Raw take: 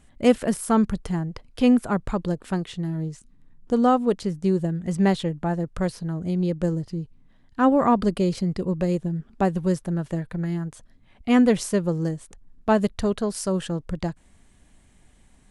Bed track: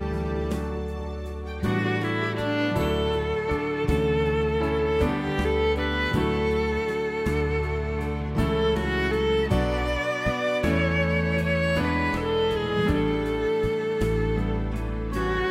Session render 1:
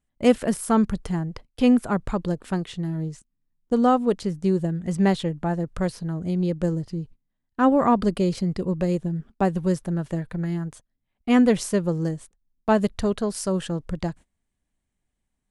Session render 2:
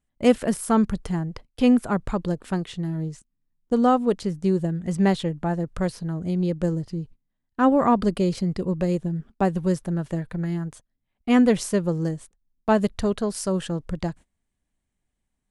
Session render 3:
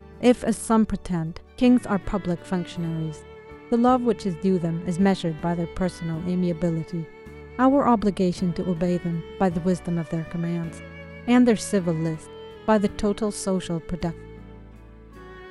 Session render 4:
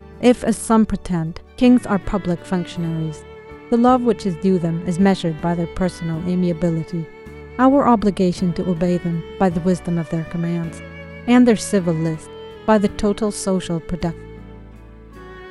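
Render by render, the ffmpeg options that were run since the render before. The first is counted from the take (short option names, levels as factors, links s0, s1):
-af "agate=range=0.0708:threshold=0.00891:ratio=16:detection=peak"
-af anull
-filter_complex "[1:a]volume=0.141[s0];[0:a][s0]amix=inputs=2:normalize=0"
-af "volume=1.78,alimiter=limit=0.794:level=0:latency=1"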